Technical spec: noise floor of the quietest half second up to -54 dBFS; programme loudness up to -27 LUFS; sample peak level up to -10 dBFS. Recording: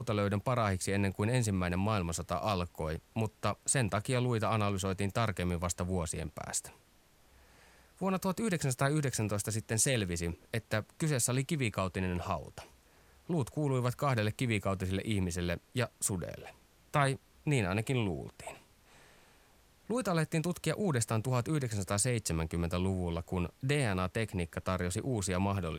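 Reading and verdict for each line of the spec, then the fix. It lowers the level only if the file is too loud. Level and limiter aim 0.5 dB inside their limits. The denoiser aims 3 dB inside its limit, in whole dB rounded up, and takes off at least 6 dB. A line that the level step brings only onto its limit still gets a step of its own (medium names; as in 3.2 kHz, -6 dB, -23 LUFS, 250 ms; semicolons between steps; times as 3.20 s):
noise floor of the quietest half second -64 dBFS: pass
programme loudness -33.5 LUFS: pass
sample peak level -15.0 dBFS: pass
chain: none needed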